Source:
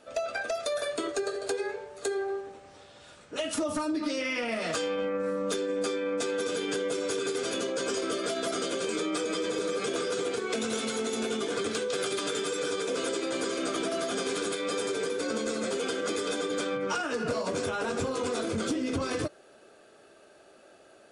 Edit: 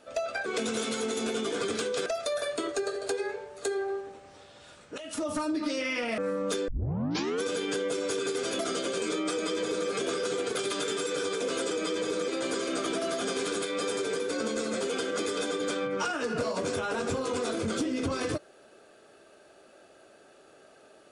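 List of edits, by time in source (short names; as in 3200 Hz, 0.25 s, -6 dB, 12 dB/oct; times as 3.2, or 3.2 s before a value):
3.38–3.86 fade in equal-power, from -15 dB
4.58–5.18 cut
5.68 tape start 0.75 s
7.59–8.46 cut
9.19–9.76 copy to 13.18
10.42–12.02 move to 0.46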